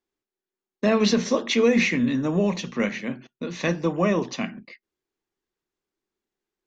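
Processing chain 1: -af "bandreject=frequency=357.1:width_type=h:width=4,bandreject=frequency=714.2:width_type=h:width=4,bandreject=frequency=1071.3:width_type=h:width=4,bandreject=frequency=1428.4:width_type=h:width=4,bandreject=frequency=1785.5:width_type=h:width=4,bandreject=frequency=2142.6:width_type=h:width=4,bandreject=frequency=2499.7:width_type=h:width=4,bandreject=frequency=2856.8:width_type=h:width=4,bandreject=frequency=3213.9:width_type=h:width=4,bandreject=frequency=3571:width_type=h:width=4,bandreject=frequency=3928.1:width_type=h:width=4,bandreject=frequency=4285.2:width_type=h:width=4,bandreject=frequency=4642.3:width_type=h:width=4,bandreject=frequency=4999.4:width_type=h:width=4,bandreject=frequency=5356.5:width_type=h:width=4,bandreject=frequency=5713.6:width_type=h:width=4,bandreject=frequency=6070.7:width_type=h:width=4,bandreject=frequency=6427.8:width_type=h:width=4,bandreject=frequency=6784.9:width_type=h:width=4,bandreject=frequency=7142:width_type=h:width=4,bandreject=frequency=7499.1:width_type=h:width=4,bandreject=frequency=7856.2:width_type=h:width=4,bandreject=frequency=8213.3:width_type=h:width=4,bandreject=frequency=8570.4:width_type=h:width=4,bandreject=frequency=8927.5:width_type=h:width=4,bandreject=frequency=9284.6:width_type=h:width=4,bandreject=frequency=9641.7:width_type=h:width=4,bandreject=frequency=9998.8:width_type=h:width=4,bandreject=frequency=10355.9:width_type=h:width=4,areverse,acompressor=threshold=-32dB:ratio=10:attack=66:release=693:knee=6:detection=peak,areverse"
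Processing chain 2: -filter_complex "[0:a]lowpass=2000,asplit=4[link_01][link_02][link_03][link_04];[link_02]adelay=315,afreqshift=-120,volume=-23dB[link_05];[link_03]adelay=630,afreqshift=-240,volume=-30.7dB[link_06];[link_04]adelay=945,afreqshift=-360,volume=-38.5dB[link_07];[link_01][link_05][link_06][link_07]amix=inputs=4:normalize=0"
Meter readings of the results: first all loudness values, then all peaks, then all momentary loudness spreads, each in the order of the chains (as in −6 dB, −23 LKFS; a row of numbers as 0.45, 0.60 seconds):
−35.0, −24.0 LKFS; −18.5, −9.5 dBFS; 8, 13 LU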